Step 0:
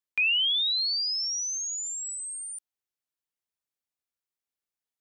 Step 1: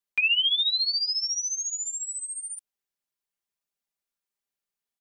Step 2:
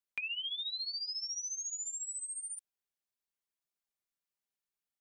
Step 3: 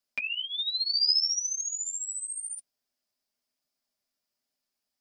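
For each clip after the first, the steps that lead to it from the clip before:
comb filter 5 ms
downward compressor, threshold −31 dBFS, peak gain reduction 11 dB; level −5.5 dB
flanger 1.1 Hz, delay 6.5 ms, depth 4.4 ms, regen −22%; thirty-one-band graphic EQ 250 Hz +11 dB, 630 Hz +9 dB, 5,000 Hz +11 dB; level +8.5 dB

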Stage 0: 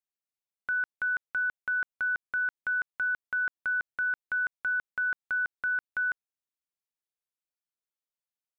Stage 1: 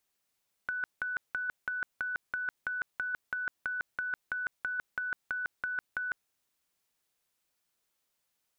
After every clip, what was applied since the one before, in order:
compressor whose output falls as the input rises −35 dBFS, ratio −0.5
level +4 dB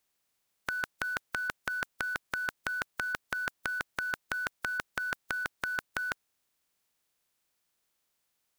compressing power law on the bin magnitudes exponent 0.56
level +1.5 dB

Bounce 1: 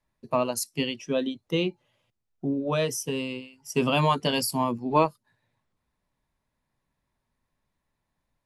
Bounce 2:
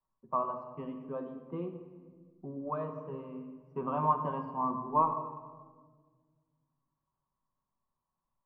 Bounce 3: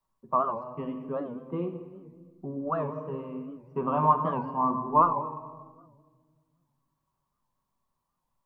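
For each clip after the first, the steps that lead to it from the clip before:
transistor ladder low-pass 1,200 Hz, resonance 70%; rectangular room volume 1,600 cubic metres, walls mixed, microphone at 1.1 metres; level −2.5 dB
wow of a warped record 78 rpm, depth 160 cents; level +6 dB

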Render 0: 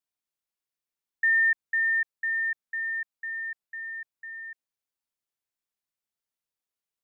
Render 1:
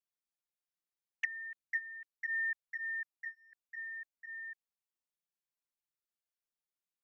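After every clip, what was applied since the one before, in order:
flanger swept by the level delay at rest 5.7 ms, full sweep at −22.5 dBFS
level −5 dB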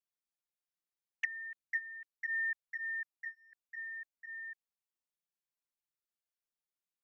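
no processing that can be heard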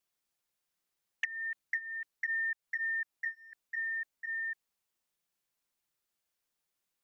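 downward compressor, threshold −41 dBFS, peak gain reduction 11.5 dB
level +9 dB

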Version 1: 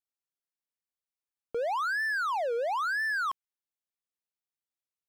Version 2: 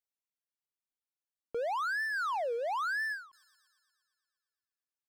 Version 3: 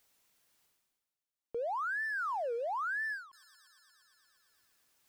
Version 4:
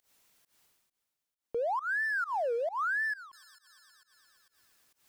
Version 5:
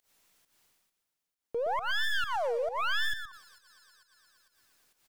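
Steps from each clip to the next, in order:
reverb reduction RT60 1.5 s; delay with a high-pass on its return 117 ms, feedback 70%, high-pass 5,600 Hz, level −14 dB; every ending faded ahead of time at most 140 dB per second; level −3 dB
reversed playback; upward compression, threshold −54 dBFS; reversed playback; soft clipping −30 dBFS, distortion −20 dB
fake sidechain pumping 134 BPM, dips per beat 1, −22 dB, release 151 ms; level +4.5 dB
stylus tracing distortion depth 0.15 ms; repeating echo 119 ms, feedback 16%, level −9.5 dB

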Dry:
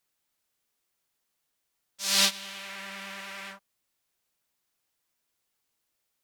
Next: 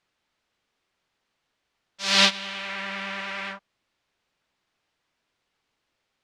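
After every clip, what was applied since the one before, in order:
low-pass filter 3,700 Hz 12 dB per octave
level +8.5 dB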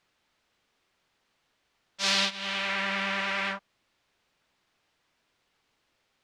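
downward compressor 10 to 1, threshold −25 dBFS, peak gain reduction 13.5 dB
level +3.5 dB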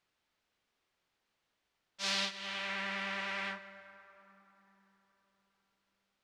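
dense smooth reverb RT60 4.2 s, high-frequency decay 0.45×, DRR 12 dB
level −8.5 dB

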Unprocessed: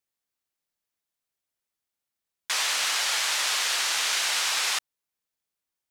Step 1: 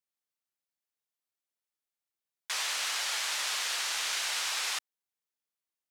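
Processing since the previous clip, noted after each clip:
high-pass filter 200 Hz 6 dB per octave
level −6.5 dB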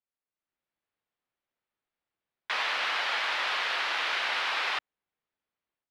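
high-frequency loss of the air 370 metres
automatic gain control gain up to 10 dB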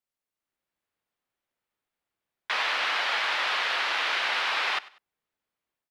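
repeating echo 97 ms, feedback 31%, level −20 dB
level +2.5 dB

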